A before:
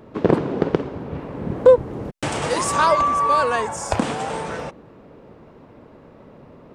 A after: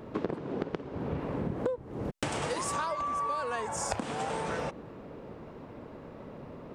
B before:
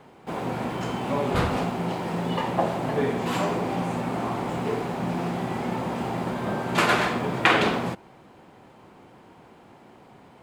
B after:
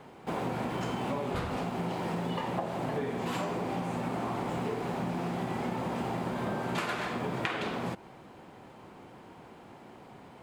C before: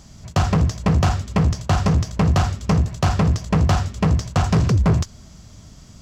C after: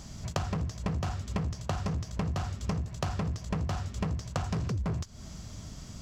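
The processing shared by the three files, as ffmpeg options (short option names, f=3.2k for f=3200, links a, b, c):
-af "acompressor=threshold=-29dB:ratio=20"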